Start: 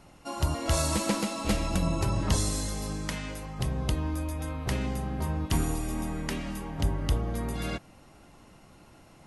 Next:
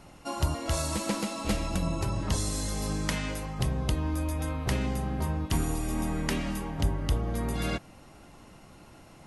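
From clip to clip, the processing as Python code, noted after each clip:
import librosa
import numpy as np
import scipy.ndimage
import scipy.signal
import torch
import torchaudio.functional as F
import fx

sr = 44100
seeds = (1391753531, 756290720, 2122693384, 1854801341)

y = fx.rider(x, sr, range_db=4, speed_s=0.5)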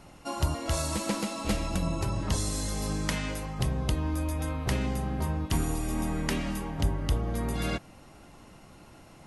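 y = x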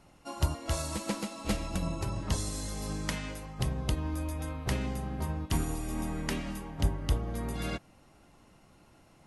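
y = fx.upward_expand(x, sr, threshold_db=-37.0, expansion=1.5)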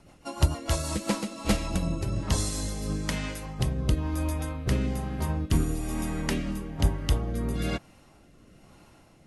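y = fx.rotary_switch(x, sr, hz=6.7, then_hz=1.1, switch_at_s=0.58)
y = y * 10.0 ** (6.5 / 20.0)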